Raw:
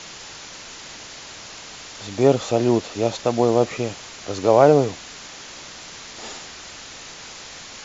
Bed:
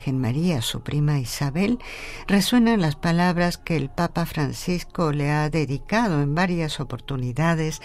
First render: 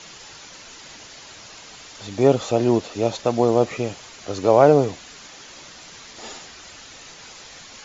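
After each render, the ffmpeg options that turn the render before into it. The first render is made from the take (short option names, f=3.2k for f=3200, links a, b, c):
-af "afftdn=nr=6:nf=-39"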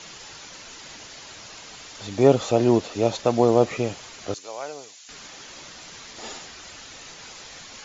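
-filter_complex "[0:a]asettb=1/sr,asplit=3[a][b][c];[a]atrim=end=4.344[d];[b]atrim=start=4.34:end=5.09,asetpts=PTS-STARTPTS,afade=t=in:d=0.004:c=qsin,afade=t=out:st=0.746:d=0.004:c=qsin,aderivative[e];[c]atrim=start=5.086[f];[d][e]acrossfade=d=0.004:c1=hsin:c2=qsin[g];[g][f]acrossfade=d=0.004:c1=qsin:c2=hsin"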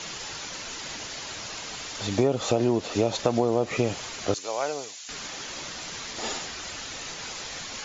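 -filter_complex "[0:a]asplit=2[a][b];[b]alimiter=limit=-14dB:level=0:latency=1:release=69,volume=-1.5dB[c];[a][c]amix=inputs=2:normalize=0,acompressor=threshold=-18dB:ratio=12"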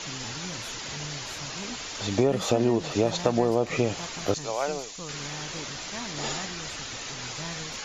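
-filter_complex "[1:a]volume=-18.5dB[a];[0:a][a]amix=inputs=2:normalize=0"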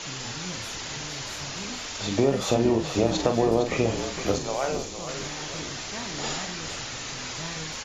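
-filter_complex "[0:a]asplit=2[a][b];[b]adelay=44,volume=-7dB[c];[a][c]amix=inputs=2:normalize=0,asplit=2[d][e];[e]asplit=5[f][g][h][i][j];[f]adelay=459,afreqshift=-49,volume=-10dB[k];[g]adelay=918,afreqshift=-98,volume=-16.4dB[l];[h]adelay=1377,afreqshift=-147,volume=-22.8dB[m];[i]adelay=1836,afreqshift=-196,volume=-29.1dB[n];[j]adelay=2295,afreqshift=-245,volume=-35.5dB[o];[k][l][m][n][o]amix=inputs=5:normalize=0[p];[d][p]amix=inputs=2:normalize=0"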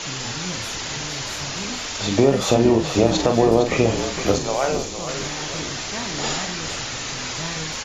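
-af "volume=6dB,alimiter=limit=-3dB:level=0:latency=1"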